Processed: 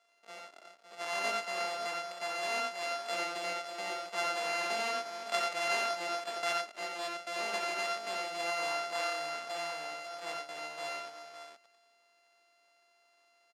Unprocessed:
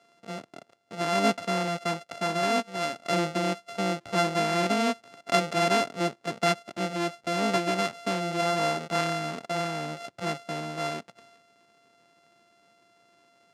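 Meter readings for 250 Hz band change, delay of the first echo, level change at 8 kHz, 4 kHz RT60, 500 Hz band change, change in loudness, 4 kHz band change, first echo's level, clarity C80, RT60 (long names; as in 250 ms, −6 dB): −21.5 dB, 57 ms, −5.0 dB, no reverb audible, −8.5 dB, −7.0 dB, −4.5 dB, −11.0 dB, no reverb audible, no reverb audible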